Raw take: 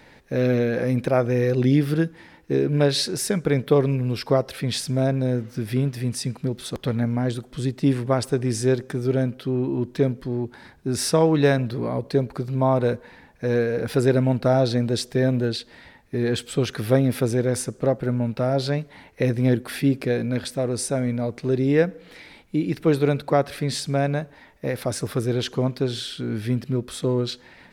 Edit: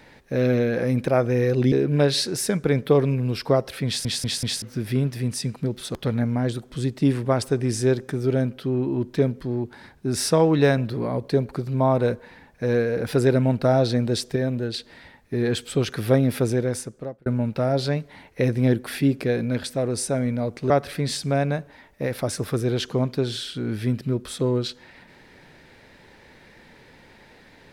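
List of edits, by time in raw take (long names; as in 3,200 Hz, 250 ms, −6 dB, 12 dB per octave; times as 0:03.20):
0:01.72–0:02.53: remove
0:04.67: stutter in place 0.19 s, 4 plays
0:15.17–0:15.55: clip gain −4 dB
0:17.32–0:18.07: fade out
0:21.51–0:23.33: remove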